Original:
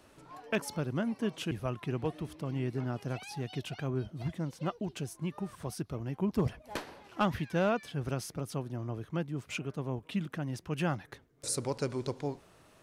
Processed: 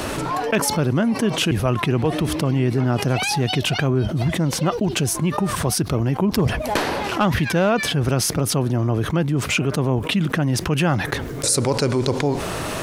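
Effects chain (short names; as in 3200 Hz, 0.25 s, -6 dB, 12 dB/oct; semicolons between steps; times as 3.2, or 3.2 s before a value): fast leveller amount 70%; gain +9 dB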